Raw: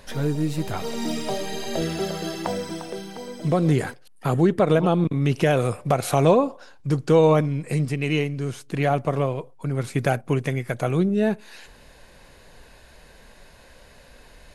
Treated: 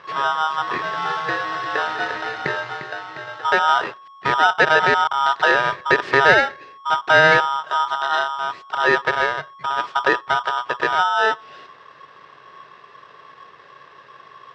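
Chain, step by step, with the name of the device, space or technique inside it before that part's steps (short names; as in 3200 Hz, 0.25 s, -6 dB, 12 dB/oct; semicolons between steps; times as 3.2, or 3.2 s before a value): ring modulator pedal into a guitar cabinet (polarity switched at an audio rate 1100 Hz; speaker cabinet 110–4100 Hz, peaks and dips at 140 Hz +8 dB, 220 Hz -4 dB, 410 Hz +7 dB, 1100 Hz +4 dB, 1800 Hz +6 dB, 3200 Hz -5 dB); gain +1 dB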